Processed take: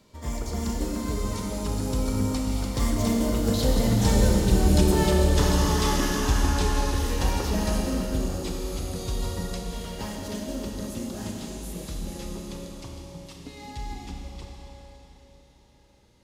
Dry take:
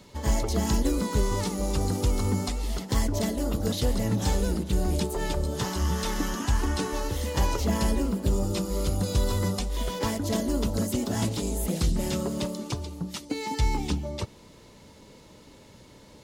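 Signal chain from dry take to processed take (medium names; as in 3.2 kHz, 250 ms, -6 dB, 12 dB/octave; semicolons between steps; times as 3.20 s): Doppler pass-by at 5.01 s, 19 m/s, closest 27 m; Schroeder reverb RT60 3.7 s, combs from 27 ms, DRR -0.5 dB; trim +3.5 dB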